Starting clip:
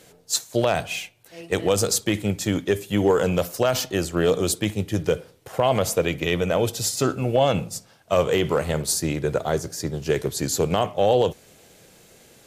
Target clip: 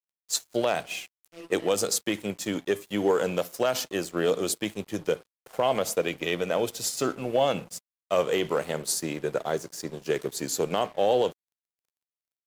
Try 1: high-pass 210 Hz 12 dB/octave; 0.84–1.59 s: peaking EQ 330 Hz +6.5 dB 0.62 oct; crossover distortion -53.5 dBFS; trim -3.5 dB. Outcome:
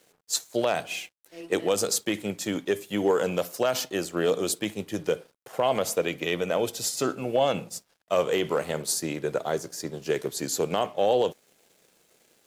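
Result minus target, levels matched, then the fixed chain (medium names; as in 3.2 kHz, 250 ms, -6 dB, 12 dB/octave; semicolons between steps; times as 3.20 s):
crossover distortion: distortion -10 dB
high-pass 210 Hz 12 dB/octave; 0.84–1.59 s: peaking EQ 330 Hz +6.5 dB 0.62 oct; crossover distortion -42 dBFS; trim -3.5 dB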